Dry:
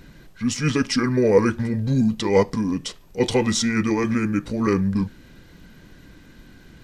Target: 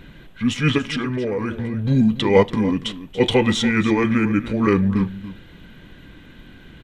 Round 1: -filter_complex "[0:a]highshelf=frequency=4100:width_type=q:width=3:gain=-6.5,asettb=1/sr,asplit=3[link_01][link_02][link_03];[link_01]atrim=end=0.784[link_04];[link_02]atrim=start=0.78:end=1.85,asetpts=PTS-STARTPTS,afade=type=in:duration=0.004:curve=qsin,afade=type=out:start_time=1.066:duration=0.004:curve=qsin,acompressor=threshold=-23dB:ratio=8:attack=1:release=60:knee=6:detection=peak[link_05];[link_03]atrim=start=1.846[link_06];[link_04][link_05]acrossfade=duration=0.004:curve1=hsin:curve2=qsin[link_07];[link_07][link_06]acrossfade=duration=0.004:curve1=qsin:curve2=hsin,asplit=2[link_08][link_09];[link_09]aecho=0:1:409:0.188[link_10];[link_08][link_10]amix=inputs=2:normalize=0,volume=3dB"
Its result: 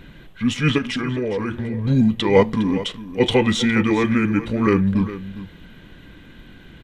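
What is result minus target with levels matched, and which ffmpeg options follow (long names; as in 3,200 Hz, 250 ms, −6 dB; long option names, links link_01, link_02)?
echo 125 ms late
-filter_complex "[0:a]highshelf=frequency=4100:width_type=q:width=3:gain=-6.5,asettb=1/sr,asplit=3[link_01][link_02][link_03];[link_01]atrim=end=0.784[link_04];[link_02]atrim=start=0.78:end=1.85,asetpts=PTS-STARTPTS,afade=type=in:duration=0.004:curve=qsin,afade=type=out:start_time=1.066:duration=0.004:curve=qsin,acompressor=threshold=-23dB:ratio=8:attack=1:release=60:knee=6:detection=peak[link_05];[link_03]atrim=start=1.846[link_06];[link_04][link_05]acrossfade=duration=0.004:curve1=hsin:curve2=qsin[link_07];[link_07][link_06]acrossfade=duration=0.004:curve1=qsin:curve2=hsin,asplit=2[link_08][link_09];[link_09]aecho=0:1:284:0.188[link_10];[link_08][link_10]amix=inputs=2:normalize=0,volume=3dB"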